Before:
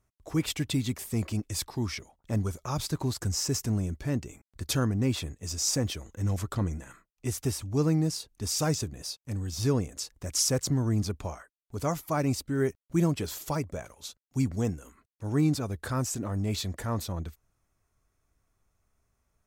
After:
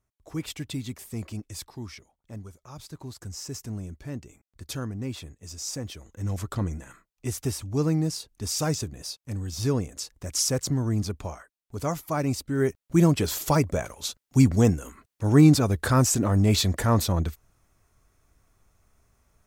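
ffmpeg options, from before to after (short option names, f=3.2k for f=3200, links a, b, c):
-af "volume=18.5dB,afade=t=out:st=1.35:d=1.22:silence=0.354813,afade=t=in:st=2.57:d=1.22:silence=0.421697,afade=t=in:st=5.89:d=0.63:silence=0.446684,afade=t=in:st=12.42:d=1.25:silence=0.375837"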